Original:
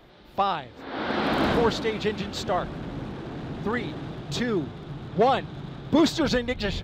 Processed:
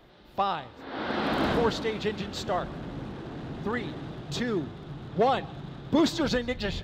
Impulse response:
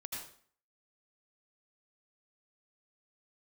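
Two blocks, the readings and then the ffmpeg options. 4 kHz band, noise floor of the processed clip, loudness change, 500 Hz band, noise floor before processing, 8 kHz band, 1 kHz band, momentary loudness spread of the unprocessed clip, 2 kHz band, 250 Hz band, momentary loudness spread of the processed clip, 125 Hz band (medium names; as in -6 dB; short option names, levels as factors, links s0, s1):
-3.0 dB, -51 dBFS, -3.0 dB, -3.0 dB, -48 dBFS, -3.0 dB, -3.0 dB, 14 LU, -3.0 dB, -3.0 dB, 14 LU, -3.0 dB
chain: -filter_complex "[0:a]bandreject=f=2300:w=28,asplit=2[s0][s1];[1:a]atrim=start_sample=2205,adelay=41[s2];[s1][s2]afir=irnorm=-1:irlink=0,volume=0.112[s3];[s0][s3]amix=inputs=2:normalize=0,volume=0.708"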